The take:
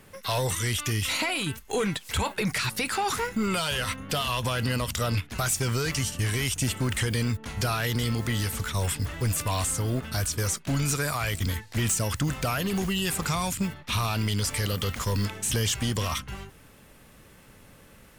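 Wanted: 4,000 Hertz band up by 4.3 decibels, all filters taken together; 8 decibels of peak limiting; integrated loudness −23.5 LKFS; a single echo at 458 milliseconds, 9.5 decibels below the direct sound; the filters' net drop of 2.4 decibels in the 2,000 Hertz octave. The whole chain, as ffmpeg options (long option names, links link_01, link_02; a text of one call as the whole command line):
ffmpeg -i in.wav -af "equalizer=frequency=2000:width_type=o:gain=-5.5,equalizer=frequency=4000:width_type=o:gain=7.5,alimiter=limit=-22dB:level=0:latency=1,aecho=1:1:458:0.335,volume=6.5dB" out.wav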